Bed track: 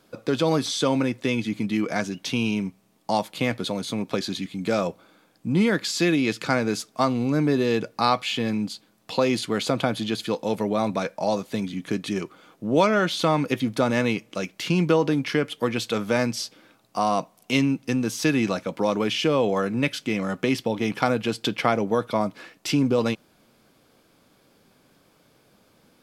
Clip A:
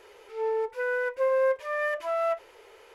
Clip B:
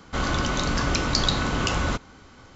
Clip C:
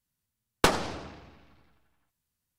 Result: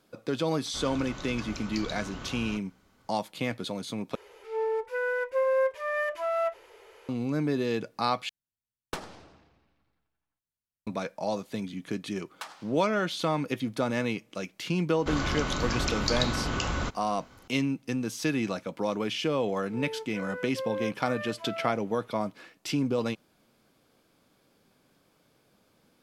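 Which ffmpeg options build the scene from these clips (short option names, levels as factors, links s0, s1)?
-filter_complex "[2:a]asplit=2[s0][s1];[1:a]asplit=2[s2][s3];[3:a]asplit=2[s4][s5];[0:a]volume=0.473[s6];[s5]highpass=f=770:w=0.5412,highpass=f=770:w=1.3066[s7];[s6]asplit=3[s8][s9][s10];[s8]atrim=end=4.154[s11];[s2]atrim=end=2.94,asetpts=PTS-STARTPTS,volume=0.891[s12];[s9]atrim=start=7.086:end=8.294[s13];[s4]atrim=end=2.58,asetpts=PTS-STARTPTS,volume=0.2[s14];[s10]atrim=start=10.866[s15];[s0]atrim=end=2.55,asetpts=PTS-STARTPTS,volume=0.158,afade=t=in:d=0.004:c=hsin,afade=t=out:st=2.546:d=0.004:c=hsin,adelay=610[s16];[s7]atrim=end=2.58,asetpts=PTS-STARTPTS,volume=0.158,afade=t=in:d=0.004:c=hsin,afade=t=out:st=2.576:d=0.004:c=hsin,adelay=11770[s17];[s1]atrim=end=2.55,asetpts=PTS-STARTPTS,volume=0.531,afade=t=in:d=0.004:c=hsin,afade=t=out:st=2.546:d=0.004:c=hsin,adelay=14930[s18];[s3]atrim=end=2.94,asetpts=PTS-STARTPTS,volume=0.316,afade=t=in:d=0.004:c=hsin,afade=t=out:st=2.936:d=0.004:c=hsin,adelay=19370[s19];[s11][s12]acrossfade=d=0.004:c1=hsin:c2=hsin[s20];[s20][s13]acrossfade=d=0.004:c1=hsin:c2=hsin[s21];[s21][s14]acrossfade=d=0.004:c1=hsin:c2=hsin[s22];[s22][s15]acrossfade=d=0.004:c1=hsin:c2=hsin[s23];[s23][s16][s17][s18][s19]amix=inputs=5:normalize=0"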